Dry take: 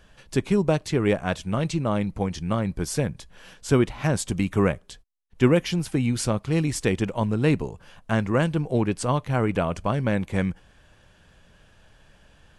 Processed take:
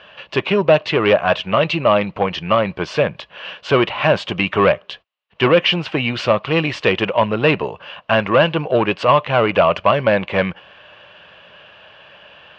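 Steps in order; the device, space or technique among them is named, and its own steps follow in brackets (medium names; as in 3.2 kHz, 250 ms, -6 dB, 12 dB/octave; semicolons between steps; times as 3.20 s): overdrive pedal into a guitar cabinet (overdrive pedal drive 20 dB, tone 3.5 kHz, clips at -4.5 dBFS; cabinet simulation 79–4100 Hz, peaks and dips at 260 Hz -6 dB, 590 Hz +7 dB, 1.1 kHz +5 dB, 2.8 kHz +10 dB)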